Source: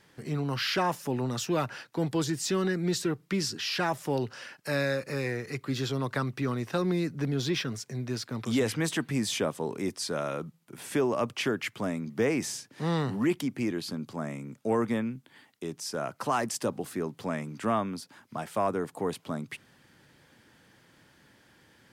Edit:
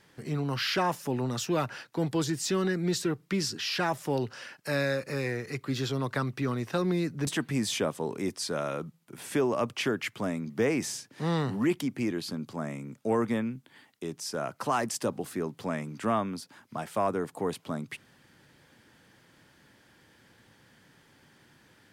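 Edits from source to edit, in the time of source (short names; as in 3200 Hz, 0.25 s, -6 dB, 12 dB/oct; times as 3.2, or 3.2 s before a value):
7.27–8.87 cut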